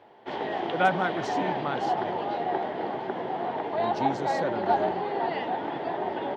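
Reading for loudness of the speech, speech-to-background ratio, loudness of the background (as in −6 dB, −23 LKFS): −32.0 LKFS, −2.5 dB, −29.5 LKFS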